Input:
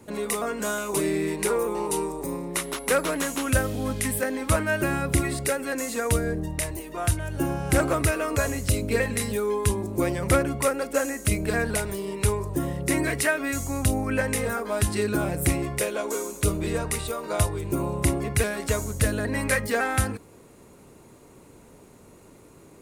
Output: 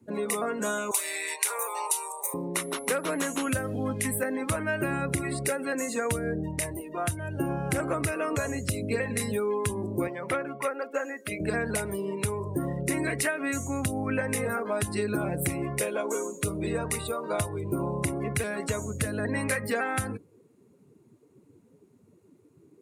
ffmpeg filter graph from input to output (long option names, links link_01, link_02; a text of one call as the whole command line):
ffmpeg -i in.wav -filter_complex "[0:a]asettb=1/sr,asplit=3[link_01][link_02][link_03];[link_01]atrim=end=0.914[link_04];[link_02]atrim=start=0.91:end=2.34,asetpts=PTS-STARTPTS,afade=type=in:duration=0.004:curve=qsin,afade=type=out:start_time=1.426:duration=0.004:curve=qsin,highpass=frequency=640:width=0.5412,highpass=frequency=640:width=1.3066,highshelf=frequency=2200:gain=10.5,bandreject=frequency=5000:width=17[link_05];[link_03]atrim=start=2.336[link_06];[link_04][link_05]acrossfade=duration=0.004:curve1=hsin:curve2=qsin[link_07];[link_07][link_06]acrossfade=duration=0.004:curve1=qsin:curve2=hsin,asettb=1/sr,asplit=3[link_08][link_09][link_10];[link_08]atrim=end=10.074[link_11];[link_09]atrim=start=10.07:end=11.4,asetpts=PTS-STARTPTS,afade=type=in:duration=0.004:curve=qsin,afade=type=out:start_time=1.326:duration=0.004:curve=qsin,highpass=frequency=680:poles=1,equalizer=frequency=8800:width=0.6:gain=-10[link_12];[link_10]atrim=start=11.396[link_13];[link_11][link_12]acrossfade=duration=0.004:curve1=hsin:curve2=qsin[link_14];[link_14][link_13]acrossfade=duration=0.004:curve1=qsin:curve2=hsin,afftdn=noise_reduction=19:noise_floor=-39,acompressor=threshold=-24dB:ratio=6,highpass=frequency=89:width=0.5412,highpass=frequency=89:width=1.3066" out.wav